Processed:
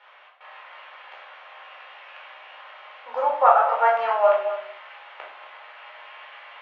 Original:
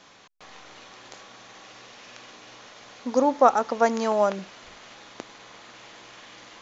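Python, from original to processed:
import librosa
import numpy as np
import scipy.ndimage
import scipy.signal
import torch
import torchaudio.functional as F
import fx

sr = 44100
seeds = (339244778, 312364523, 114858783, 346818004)

y = scipy.signal.sosfilt(scipy.signal.ellip(3, 1.0, 70, [640.0, 2900.0], 'bandpass', fs=sr, output='sos'), x)
y = fx.doubler(y, sr, ms=13.0, db=-10.5)
y = y + 10.0 ** (-12.5 / 20.0) * np.pad(y, (int(235 * sr / 1000.0), 0))[:len(y)]
y = fx.room_shoebox(y, sr, seeds[0], volume_m3=920.0, walls='furnished', distance_m=4.4)
y = F.gain(torch.from_numpy(y), -1.0).numpy()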